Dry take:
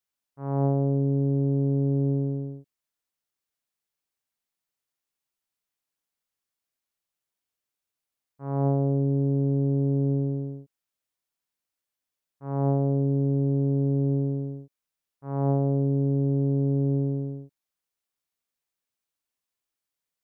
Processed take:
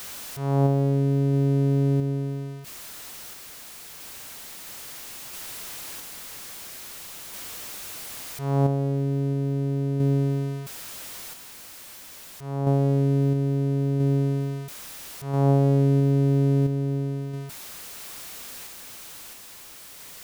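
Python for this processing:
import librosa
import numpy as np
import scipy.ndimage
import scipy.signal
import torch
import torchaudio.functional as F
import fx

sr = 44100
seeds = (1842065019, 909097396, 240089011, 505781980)

y = x + 0.5 * 10.0 ** (-33.5 / 20.0) * np.sign(x)
y = fx.tremolo_random(y, sr, seeds[0], hz=1.5, depth_pct=55)
y = y * 10.0 ** (3.5 / 20.0)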